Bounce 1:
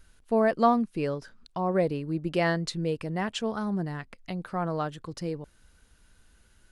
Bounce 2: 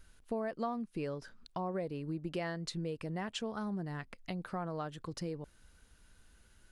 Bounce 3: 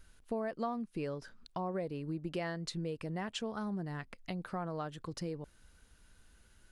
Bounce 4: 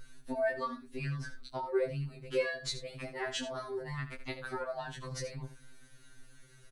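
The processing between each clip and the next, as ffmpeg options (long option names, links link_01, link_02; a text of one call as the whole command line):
ffmpeg -i in.wav -af "acompressor=threshold=-33dB:ratio=4,volume=-2.5dB" out.wav
ffmpeg -i in.wav -af anull out.wav
ffmpeg -i in.wav -filter_complex "[0:a]asplit=2[link_01][link_02];[link_02]adelay=15,volume=-4dB[link_03];[link_01][link_03]amix=inputs=2:normalize=0,aecho=1:1:78:0.251,afftfilt=real='re*2.45*eq(mod(b,6),0)':imag='im*2.45*eq(mod(b,6),0)':win_size=2048:overlap=0.75,volume=6.5dB" out.wav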